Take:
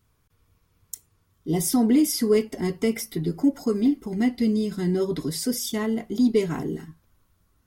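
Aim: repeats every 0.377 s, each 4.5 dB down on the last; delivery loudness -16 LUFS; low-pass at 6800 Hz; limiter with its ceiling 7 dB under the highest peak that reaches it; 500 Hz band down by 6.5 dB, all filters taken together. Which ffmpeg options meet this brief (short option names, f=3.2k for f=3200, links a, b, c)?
-af "lowpass=6.8k,equalizer=f=500:t=o:g=-8.5,alimiter=limit=-20dB:level=0:latency=1,aecho=1:1:377|754|1131|1508|1885|2262|2639|3016|3393:0.596|0.357|0.214|0.129|0.0772|0.0463|0.0278|0.0167|0.01,volume=11.5dB"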